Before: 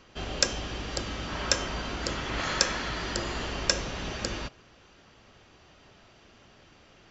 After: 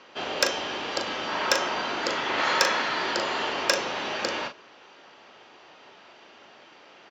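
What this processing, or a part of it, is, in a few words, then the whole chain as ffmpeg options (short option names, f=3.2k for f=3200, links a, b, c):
intercom: -filter_complex "[0:a]highpass=370,lowpass=4.5k,equalizer=f=900:t=o:w=0.21:g=5,asoftclip=type=tanh:threshold=-13.5dB,asplit=2[a][b];[b]adelay=39,volume=-7.5dB[c];[a][c]amix=inputs=2:normalize=0,volume=6.5dB"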